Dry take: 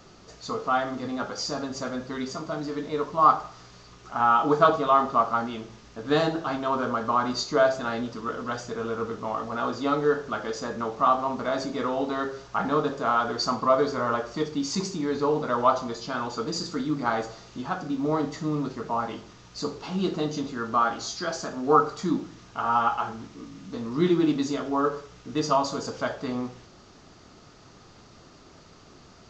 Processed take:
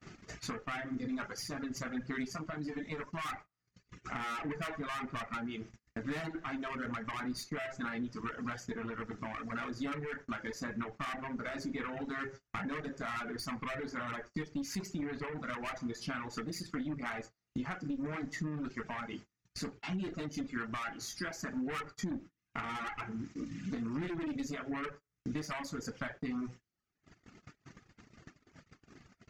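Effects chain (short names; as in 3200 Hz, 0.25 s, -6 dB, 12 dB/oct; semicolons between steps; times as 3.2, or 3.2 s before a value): tube stage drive 27 dB, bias 0.65; reverb removal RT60 1.2 s; compressor 6:1, threshold -44 dBFS, peak gain reduction 15 dB; graphic EQ 125/250/500/1000/2000/4000 Hz +3/+4/-5/-5/+10/-7 dB; gate -54 dBFS, range -35 dB; gain +6.5 dB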